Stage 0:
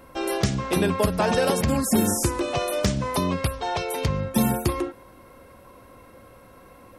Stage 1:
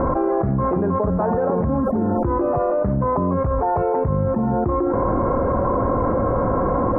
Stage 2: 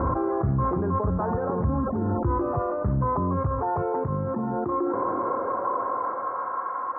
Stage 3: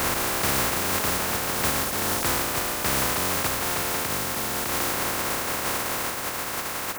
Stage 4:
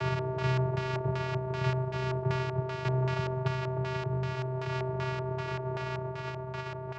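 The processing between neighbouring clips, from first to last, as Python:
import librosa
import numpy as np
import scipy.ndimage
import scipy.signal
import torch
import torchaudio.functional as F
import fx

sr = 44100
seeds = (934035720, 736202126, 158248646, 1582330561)

y1 = scipy.signal.sosfilt(scipy.signal.cheby2(4, 50, 3100.0, 'lowpass', fs=sr, output='sos'), x)
y1 = fx.env_flatten(y1, sr, amount_pct=100)
y1 = F.gain(torch.from_numpy(y1), -3.0).numpy()
y2 = fx.curve_eq(y1, sr, hz=(110.0, 200.0, 350.0, 610.0, 1200.0, 4100.0), db=(0, -8, -5, -10, -1, -17))
y2 = fx.filter_sweep_highpass(y2, sr, from_hz=68.0, to_hz=1100.0, start_s=2.92, end_s=6.68, q=0.92)
y3 = fx.spec_flatten(y2, sr, power=0.14)
y4 = fx.vocoder(y3, sr, bands=8, carrier='square', carrier_hz=129.0)
y4 = fx.filter_lfo_lowpass(y4, sr, shape='square', hz=2.6, low_hz=710.0, high_hz=3600.0, q=1.1)
y4 = F.gain(torch.from_numpy(y4), -2.5).numpy()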